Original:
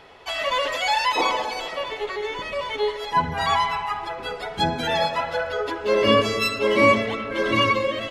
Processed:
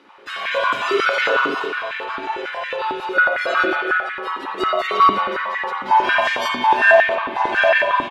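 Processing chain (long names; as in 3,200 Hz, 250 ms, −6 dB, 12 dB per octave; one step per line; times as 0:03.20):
ring modulation 460 Hz
far-end echo of a speakerphone 90 ms, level −9 dB
spring reverb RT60 1.4 s, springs 45 ms, chirp 55 ms, DRR −4 dB
high-pass on a step sequencer 11 Hz 290–1,900 Hz
level −3.5 dB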